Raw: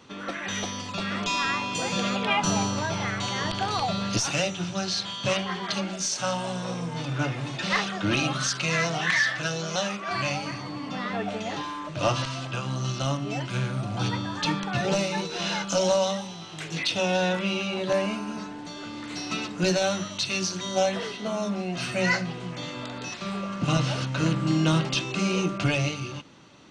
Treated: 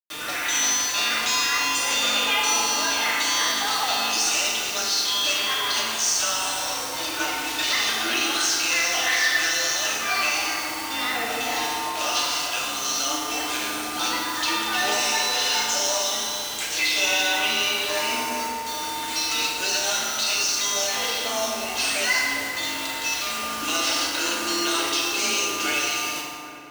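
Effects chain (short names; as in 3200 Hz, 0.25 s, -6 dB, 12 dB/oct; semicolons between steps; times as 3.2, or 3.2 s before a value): Chebyshev high-pass 210 Hz, order 6; tilt +4.5 dB/oct; limiter -17 dBFS, peak gain reduction 11.5 dB; requantised 6-bit, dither none; frequency shift +26 Hz; dark delay 0.398 s, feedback 49%, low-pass 1700 Hz, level -11 dB; FDN reverb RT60 2.2 s, low-frequency decay 1.05×, high-frequency decay 0.6×, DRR -3.5 dB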